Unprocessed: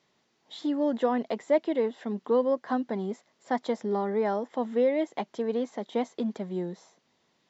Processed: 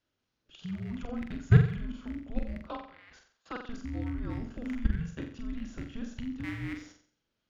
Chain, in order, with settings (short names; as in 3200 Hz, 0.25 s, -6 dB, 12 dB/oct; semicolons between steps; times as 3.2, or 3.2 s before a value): rattling part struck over -44 dBFS, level -30 dBFS; 2.68–3.69 Chebyshev band-pass 1300–4900 Hz, order 2; level quantiser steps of 21 dB; spectral noise reduction 6 dB; flutter echo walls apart 7.7 m, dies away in 0.5 s; frequency shift -480 Hz; gain +5.5 dB